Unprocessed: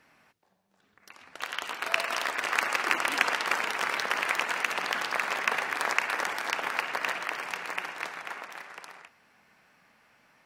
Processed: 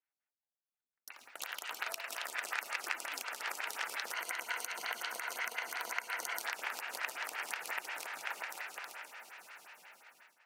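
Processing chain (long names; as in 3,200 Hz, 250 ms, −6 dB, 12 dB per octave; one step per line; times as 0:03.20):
spectral tilt +3.5 dB per octave
notch filter 1,100 Hz, Q 9
feedback delay with all-pass diffusion 706 ms, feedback 50%, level −12 dB
noise gate −52 dBFS, range −33 dB
convolution reverb RT60 2.8 s, pre-delay 68 ms, DRR 14 dB
downward compressor 6 to 1, threshold −30 dBFS, peak gain reduction 15.5 dB
0:04.12–0:06.42: EQ curve with evenly spaced ripples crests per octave 1.9, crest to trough 7 dB
phaser with staggered stages 5.6 Hz
level −1.5 dB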